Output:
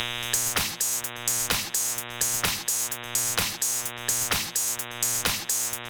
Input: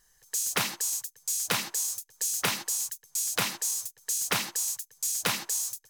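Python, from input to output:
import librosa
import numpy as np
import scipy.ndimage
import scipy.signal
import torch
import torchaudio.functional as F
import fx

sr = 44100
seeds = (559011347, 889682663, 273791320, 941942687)

y = fx.octave_divider(x, sr, octaves=1, level_db=0.0)
y = fx.dmg_buzz(y, sr, base_hz=120.0, harmonics=32, level_db=-48.0, tilt_db=0, odd_only=False)
y = fx.band_squash(y, sr, depth_pct=100)
y = F.gain(torch.from_numpy(y), 3.0).numpy()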